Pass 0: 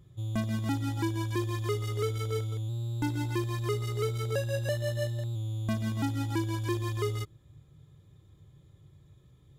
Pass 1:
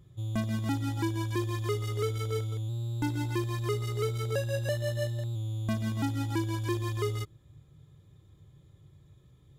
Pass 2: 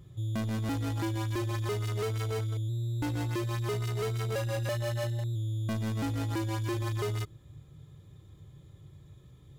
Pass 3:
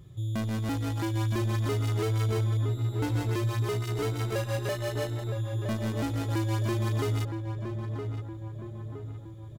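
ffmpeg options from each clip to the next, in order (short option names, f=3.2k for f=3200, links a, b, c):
-af anull
-af "asoftclip=type=tanh:threshold=-33dB,volume=4.5dB"
-filter_complex "[0:a]asplit=2[a][b];[b]adelay=966,lowpass=f=1.4k:p=1,volume=-6dB,asplit=2[c][d];[d]adelay=966,lowpass=f=1.4k:p=1,volume=0.54,asplit=2[e][f];[f]adelay=966,lowpass=f=1.4k:p=1,volume=0.54,asplit=2[g][h];[h]adelay=966,lowpass=f=1.4k:p=1,volume=0.54,asplit=2[i][j];[j]adelay=966,lowpass=f=1.4k:p=1,volume=0.54,asplit=2[k][l];[l]adelay=966,lowpass=f=1.4k:p=1,volume=0.54,asplit=2[m][n];[n]adelay=966,lowpass=f=1.4k:p=1,volume=0.54[o];[a][c][e][g][i][k][m][o]amix=inputs=8:normalize=0,volume=1.5dB"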